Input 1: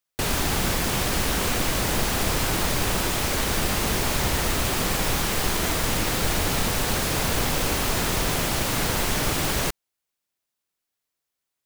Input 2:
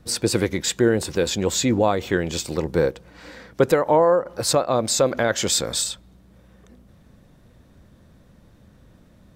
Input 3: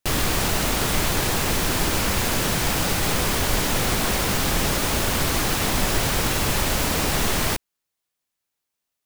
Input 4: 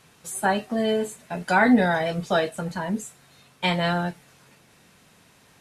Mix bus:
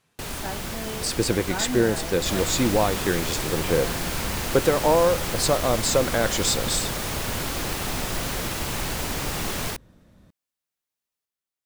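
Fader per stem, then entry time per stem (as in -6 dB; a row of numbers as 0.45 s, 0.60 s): -8.5 dB, -2.5 dB, -8.0 dB, -13.0 dB; 0.00 s, 0.95 s, 2.20 s, 0.00 s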